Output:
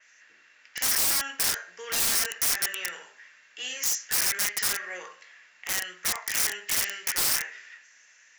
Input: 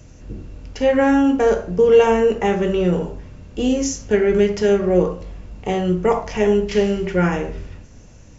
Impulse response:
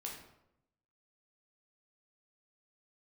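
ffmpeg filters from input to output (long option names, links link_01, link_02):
-af "highpass=frequency=1800:width_type=q:width=5.6,aeval=exprs='(mod(9.44*val(0)+1,2)-1)/9.44':channel_layout=same,adynamicequalizer=threshold=0.00891:dfrequency=4500:dqfactor=0.7:tfrequency=4500:tqfactor=0.7:attack=5:release=100:ratio=0.375:range=4:mode=boostabove:tftype=highshelf,volume=-5.5dB"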